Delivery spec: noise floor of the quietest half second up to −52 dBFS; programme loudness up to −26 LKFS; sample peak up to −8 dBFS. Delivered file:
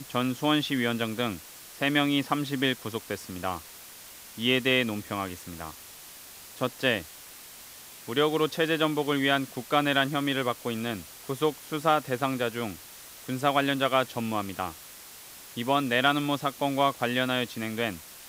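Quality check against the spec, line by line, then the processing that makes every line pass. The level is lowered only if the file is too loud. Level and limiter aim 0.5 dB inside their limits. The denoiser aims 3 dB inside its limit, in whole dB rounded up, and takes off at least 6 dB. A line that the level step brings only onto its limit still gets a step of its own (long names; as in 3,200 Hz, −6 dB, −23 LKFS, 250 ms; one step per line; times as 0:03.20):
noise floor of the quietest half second −47 dBFS: out of spec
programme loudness −27.5 LKFS: in spec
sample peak −7.0 dBFS: out of spec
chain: broadband denoise 8 dB, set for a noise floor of −47 dBFS
brickwall limiter −8.5 dBFS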